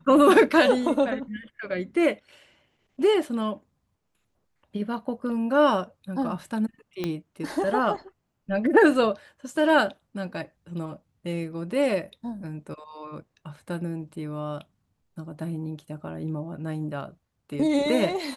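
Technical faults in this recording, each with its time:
7.04 s: pop -15 dBFS

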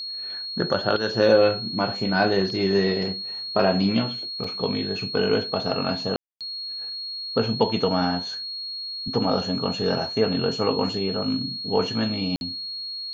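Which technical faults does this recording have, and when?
whine 4.3 kHz -30 dBFS
4.44 s: dropout 3.5 ms
6.16–6.41 s: dropout 247 ms
12.36–12.41 s: dropout 51 ms

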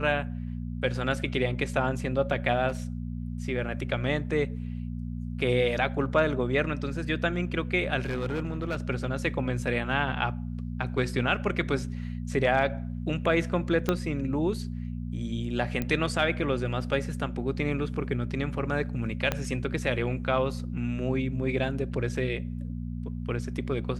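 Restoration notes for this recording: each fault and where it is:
hum 60 Hz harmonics 4 -34 dBFS
2.68–2.84 s: clipped -26.5 dBFS
8.05–8.77 s: clipped -25.5 dBFS
13.89 s: pop -11 dBFS
15.82 s: pop -16 dBFS
19.32 s: pop -12 dBFS

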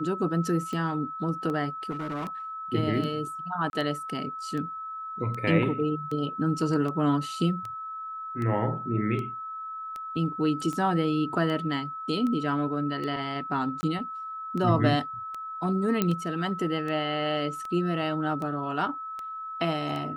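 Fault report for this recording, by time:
tick 78 rpm -23 dBFS
whine 1.3 kHz -34 dBFS
1.90–2.28 s: clipped -29 dBFS
3.70–3.73 s: dropout 31 ms
13.81–13.83 s: dropout 20 ms
16.02 s: pop -10 dBFS

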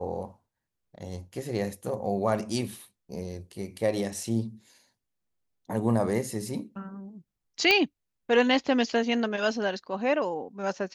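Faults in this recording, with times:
7.71 s: pop -8 dBFS

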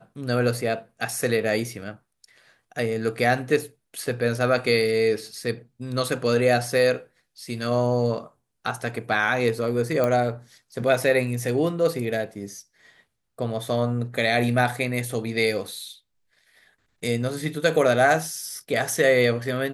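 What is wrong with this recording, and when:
10.04 s: pop -11 dBFS

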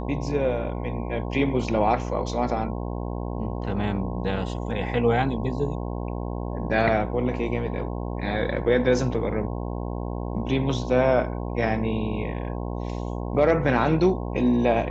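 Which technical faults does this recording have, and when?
buzz 60 Hz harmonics 18 -30 dBFS

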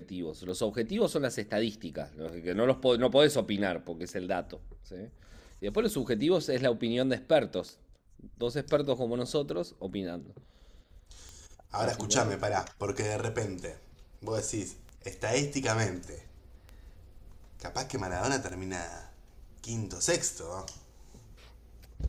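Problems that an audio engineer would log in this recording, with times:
tick 33 1/3 rpm -30 dBFS

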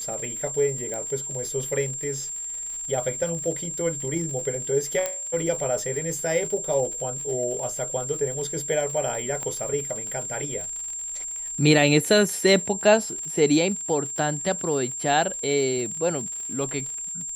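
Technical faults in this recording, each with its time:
crackle 83 per s -33 dBFS
whine 7.4 kHz -30 dBFS
0.94 s: pop -19 dBFS
5.06 s: pop -10 dBFS
9.43 s: pop -18 dBFS

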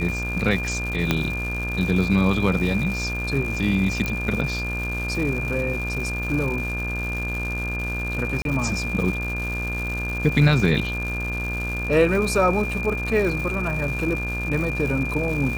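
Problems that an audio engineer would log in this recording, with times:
buzz 60 Hz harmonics 29 -29 dBFS
crackle 300 per s -29 dBFS
whine 2.4 kHz -28 dBFS
1.11 s: pop -5 dBFS
4.06 s: pop -11 dBFS
8.42–8.45 s: dropout 32 ms

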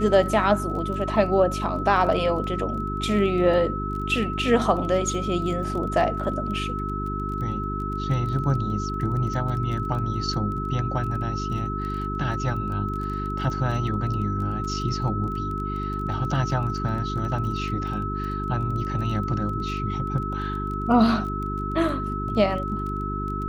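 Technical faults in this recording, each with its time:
crackle 17 per s -32 dBFS
hum 50 Hz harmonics 8 -30 dBFS
whine 1.3 kHz -30 dBFS

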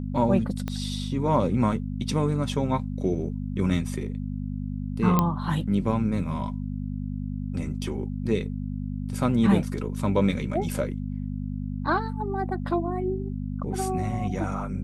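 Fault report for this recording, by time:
hum 50 Hz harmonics 5 -31 dBFS
0.68 s: pop -17 dBFS
5.19 s: pop -8 dBFS

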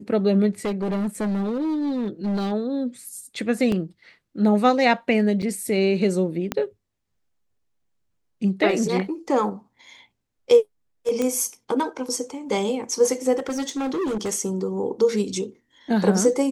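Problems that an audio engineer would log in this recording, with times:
0.65–2.53 s: clipped -21.5 dBFS
3.72 s: dropout 2.7 ms
5.42–5.43 s: dropout 6.4 ms
6.52 s: pop -9 dBFS
11.22 s: pop -12 dBFS
13.36–14.30 s: clipped -22.5 dBFS

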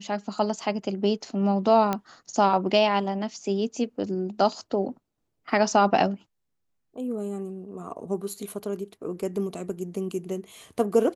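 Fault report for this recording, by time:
1.93 s: pop -12 dBFS

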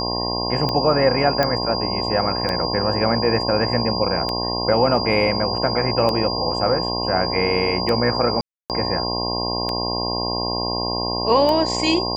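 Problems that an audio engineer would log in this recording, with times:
buzz 60 Hz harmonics 18 -26 dBFS
tick 33 1/3 rpm -10 dBFS
whine 4.8 kHz -25 dBFS
1.43 s: pop -6 dBFS
8.41–8.70 s: dropout 288 ms

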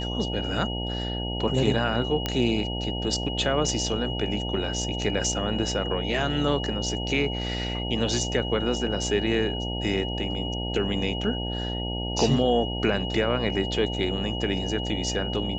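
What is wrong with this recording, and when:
buzz 60 Hz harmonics 15 -31 dBFS
whine 2.9 kHz -33 dBFS
2.26 s: pop -11 dBFS

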